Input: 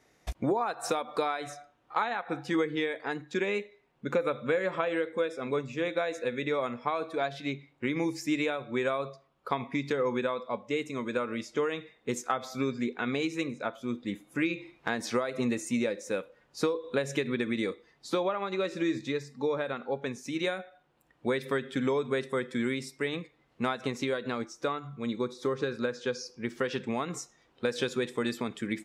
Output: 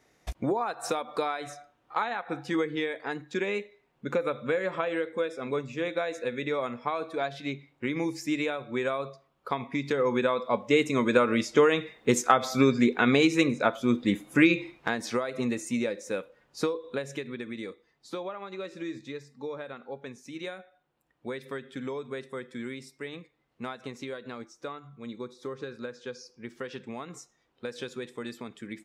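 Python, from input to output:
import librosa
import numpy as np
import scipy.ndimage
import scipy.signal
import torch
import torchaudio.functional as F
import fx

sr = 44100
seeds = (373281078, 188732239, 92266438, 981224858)

y = fx.gain(x, sr, db=fx.line((9.68, 0.0), (10.81, 9.0), (14.54, 9.0), (15.01, 0.0), (16.64, 0.0), (17.31, -7.0)))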